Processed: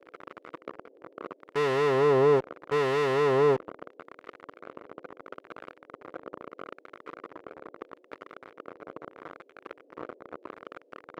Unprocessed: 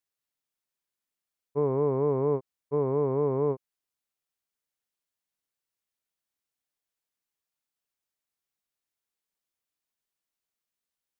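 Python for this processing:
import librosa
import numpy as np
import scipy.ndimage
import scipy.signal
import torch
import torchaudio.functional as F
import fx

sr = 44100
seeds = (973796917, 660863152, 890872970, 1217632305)

p1 = fx.dmg_noise_band(x, sr, seeds[0], low_hz=280.0, high_hz=540.0, level_db=-55.0)
p2 = fx.fuzz(p1, sr, gain_db=53.0, gate_db=-49.0)
p3 = p1 + (p2 * 10.0 ** (-10.0 / 20.0))
p4 = fx.filter_lfo_bandpass(p3, sr, shape='sine', hz=0.76, low_hz=850.0, high_hz=1800.0, q=0.7)
y = fx.low_shelf(p4, sr, hz=250.0, db=9.5)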